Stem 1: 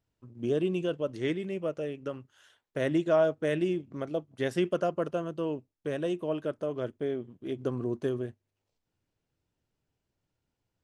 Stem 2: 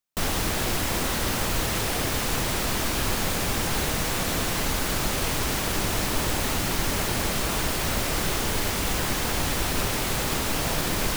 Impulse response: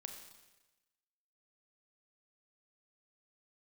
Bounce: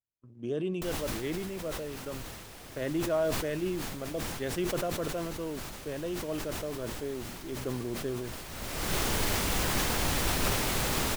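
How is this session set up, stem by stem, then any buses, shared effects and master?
-5.0 dB, 0.00 s, no send, gate -54 dBFS, range -18 dB
-3.5 dB, 0.65 s, no send, auto duck -18 dB, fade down 1.40 s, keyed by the first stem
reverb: none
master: decay stretcher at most 31 dB/s

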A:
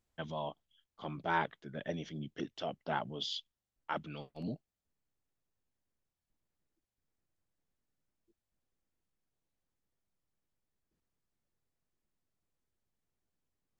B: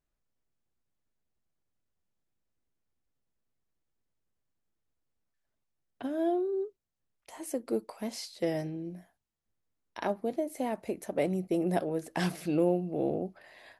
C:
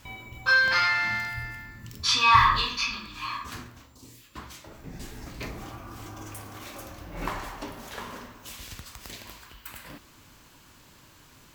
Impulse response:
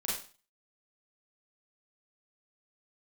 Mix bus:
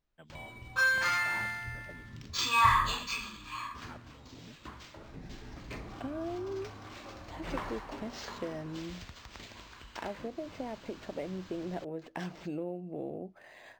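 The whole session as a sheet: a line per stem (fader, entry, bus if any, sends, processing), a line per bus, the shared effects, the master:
-13.5 dB, 0.00 s, no send, none
+1.5 dB, 0.00 s, no send, compression 3:1, threshold -40 dBFS, peak gain reduction 13.5 dB
-5.5 dB, 0.30 s, no send, upward compressor, threshold -37 dBFS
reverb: none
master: decimation joined by straight lines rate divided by 4×

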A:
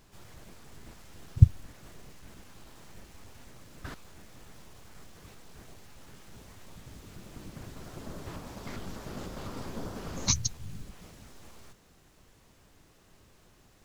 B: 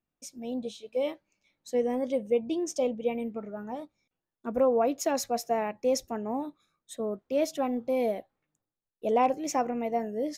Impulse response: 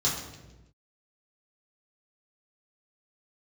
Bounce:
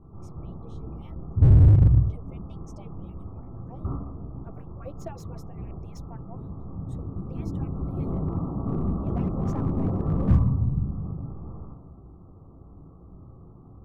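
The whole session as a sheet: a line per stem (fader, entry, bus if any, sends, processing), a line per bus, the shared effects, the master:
+2.5 dB, 0.00 s, send -9 dB, Chebyshev low-pass 1.3 kHz, order 8
-13.0 dB, 0.00 s, no send, harmonic-percussive separation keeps percussive; reverb removal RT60 0.68 s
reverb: on, RT60 1.1 s, pre-delay 3 ms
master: tilt shelf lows +6.5 dB, about 1.5 kHz; slew-rate limiter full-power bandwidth 25 Hz

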